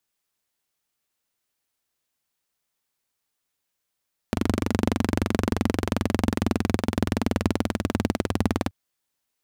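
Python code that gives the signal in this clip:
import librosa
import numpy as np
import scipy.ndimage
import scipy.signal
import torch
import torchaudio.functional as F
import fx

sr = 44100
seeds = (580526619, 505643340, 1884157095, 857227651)

y = fx.engine_single_rev(sr, seeds[0], length_s=4.38, rpm=2900, resonances_hz=(94.0, 220.0), end_rpm=2300)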